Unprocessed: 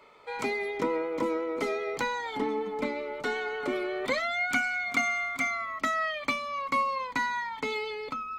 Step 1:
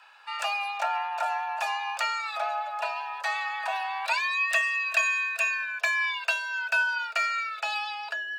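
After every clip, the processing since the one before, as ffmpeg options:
-af "afreqshift=400,equalizer=f=230:t=o:w=2.2:g=-15,volume=3.5dB"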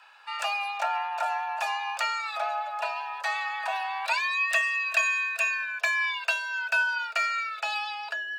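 -af anull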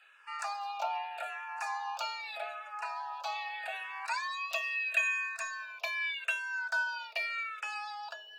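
-filter_complex "[0:a]asplit=2[a][b];[b]afreqshift=-0.81[c];[a][c]amix=inputs=2:normalize=1,volume=-4dB"

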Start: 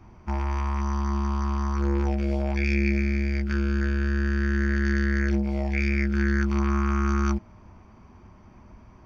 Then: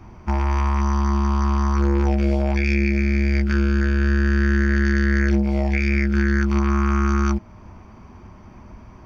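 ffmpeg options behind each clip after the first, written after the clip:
-af "alimiter=limit=-17dB:level=0:latency=1:release=365,volume=7dB"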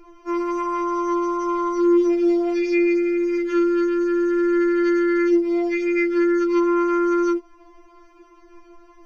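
-af "afftfilt=real='re*4*eq(mod(b,16),0)':imag='im*4*eq(mod(b,16),0)':win_size=2048:overlap=0.75"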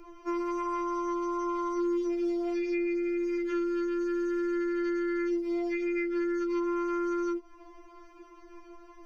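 -filter_complex "[0:a]acrossover=split=120|3100[a][b][c];[a]acompressor=threshold=-47dB:ratio=4[d];[b]acompressor=threshold=-28dB:ratio=4[e];[c]acompressor=threshold=-55dB:ratio=4[f];[d][e][f]amix=inputs=3:normalize=0,volume=-2dB"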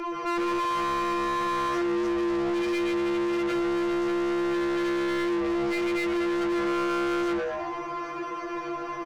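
-filter_complex "[0:a]asplit=5[a][b][c][d][e];[b]adelay=114,afreqshift=140,volume=-14dB[f];[c]adelay=228,afreqshift=280,volume=-22.6dB[g];[d]adelay=342,afreqshift=420,volume=-31.3dB[h];[e]adelay=456,afreqshift=560,volume=-39.9dB[i];[a][f][g][h][i]amix=inputs=5:normalize=0,asplit=2[j][k];[k]highpass=f=720:p=1,volume=32dB,asoftclip=type=tanh:threshold=-21dB[l];[j][l]amix=inputs=2:normalize=0,lowpass=f=2.2k:p=1,volume=-6dB"

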